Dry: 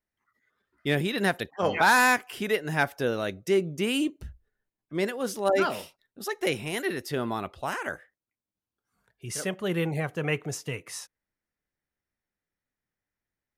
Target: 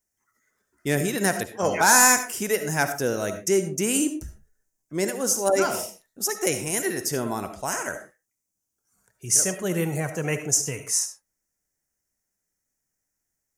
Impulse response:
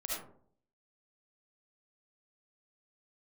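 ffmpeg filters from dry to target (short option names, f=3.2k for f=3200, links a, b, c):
-filter_complex "[0:a]highshelf=f=4.9k:t=q:w=3:g=10,bandreject=f=1.2k:w=16,asplit=2[a][b];[1:a]atrim=start_sample=2205,afade=t=out:st=0.21:d=0.01,atrim=end_sample=9702[c];[b][c]afir=irnorm=-1:irlink=0,volume=-7.5dB[d];[a][d]amix=inputs=2:normalize=0"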